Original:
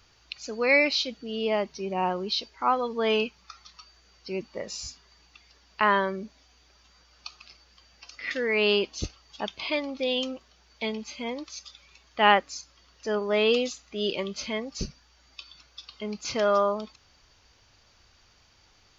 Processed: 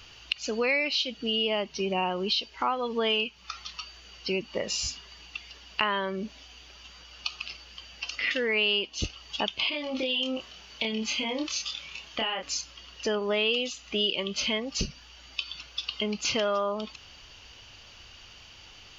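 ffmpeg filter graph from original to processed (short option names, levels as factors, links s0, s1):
-filter_complex "[0:a]asettb=1/sr,asplit=3[s0][s1][s2];[s0]atrim=end=9.694[s3];[s1]atrim=start=9.69:end=12.43,asetpts=PTS-STARTPTS,afade=t=in:d=0.004:c=qsin,afade=t=out:st=2.736:d=0.004:c=qsin,acompressor=threshold=0.02:ratio=10:attack=3.2:release=140:knee=1:detection=peak,asplit=2[s4][s5];[s5]adelay=27,volume=0.75[s6];[s4][s6]amix=inputs=2:normalize=0,atrim=end_sample=120834[s7];[s2]atrim=start=12.426[s8];[s3][s7]acrossfade=d=0.004:c1=hsin:c2=qsin[s9];[s9][s8]acrossfade=d=0.004:c1=qsin:c2=hsin,equalizer=f=2900:t=o:w=0.35:g=13.5,acompressor=threshold=0.02:ratio=4,volume=2.37"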